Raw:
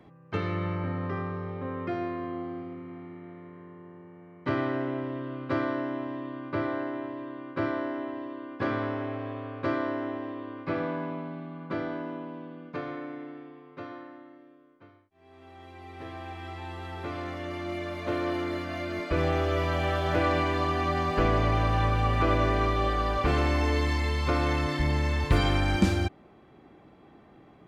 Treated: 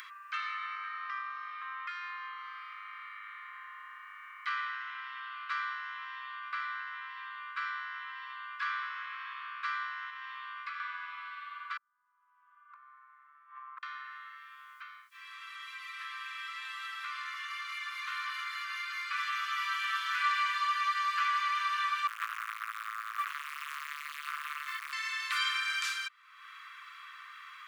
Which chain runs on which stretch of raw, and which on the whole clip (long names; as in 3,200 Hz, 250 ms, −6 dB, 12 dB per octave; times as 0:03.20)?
0:10.09–0:10.80: low-shelf EQ 270 Hz −11 dB + downward compressor 3 to 1, threshold −36 dBFS
0:11.77–0:13.83: downward compressor 2 to 1, threshold −38 dBFS + low-pass with resonance 910 Hz, resonance Q 1.9 + gate with flip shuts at −35 dBFS, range −34 dB
0:22.07–0:24.93: low-pass filter 2,600 Hz + log-companded quantiser 6 bits + saturating transformer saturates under 1,100 Hz
whole clip: Butterworth high-pass 1,100 Hz 96 dB per octave; upward compression, threshold −36 dBFS; level +1.5 dB